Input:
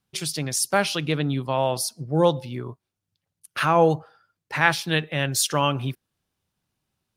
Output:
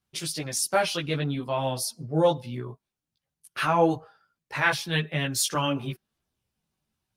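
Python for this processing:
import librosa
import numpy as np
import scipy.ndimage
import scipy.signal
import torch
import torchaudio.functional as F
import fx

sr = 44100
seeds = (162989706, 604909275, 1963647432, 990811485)

y = fx.chorus_voices(x, sr, voices=4, hz=0.61, base_ms=16, depth_ms=2.7, mix_pct=50)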